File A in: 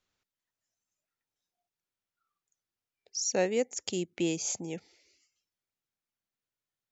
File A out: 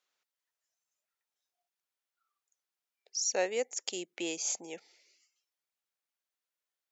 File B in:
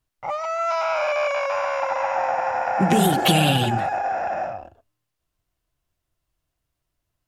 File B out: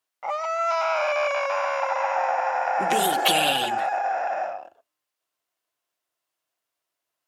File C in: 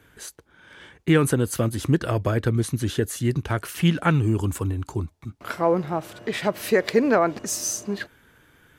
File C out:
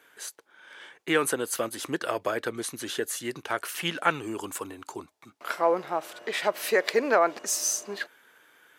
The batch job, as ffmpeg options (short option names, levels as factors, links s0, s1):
-af "highpass=510"